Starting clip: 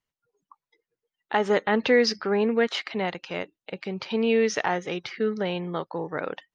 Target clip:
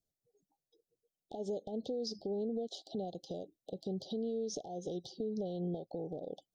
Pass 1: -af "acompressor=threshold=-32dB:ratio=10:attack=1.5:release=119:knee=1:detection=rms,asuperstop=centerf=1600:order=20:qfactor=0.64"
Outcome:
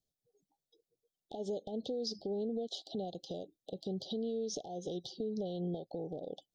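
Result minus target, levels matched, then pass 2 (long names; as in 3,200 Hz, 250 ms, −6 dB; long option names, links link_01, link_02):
4,000 Hz band +3.5 dB
-af "acompressor=threshold=-32dB:ratio=10:attack=1.5:release=119:knee=1:detection=rms,asuperstop=centerf=1600:order=20:qfactor=0.64,equalizer=frequency=3200:width=1.2:gain=-6"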